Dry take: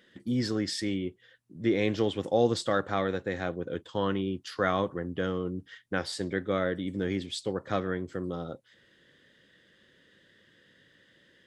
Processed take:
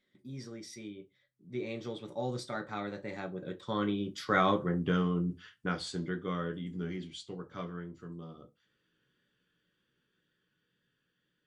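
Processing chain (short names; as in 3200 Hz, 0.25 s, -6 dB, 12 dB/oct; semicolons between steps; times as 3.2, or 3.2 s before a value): Doppler pass-by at 4.68, 24 m/s, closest 16 m; wow and flutter 22 cents; reverb RT60 0.20 s, pre-delay 5 ms, DRR 5.5 dB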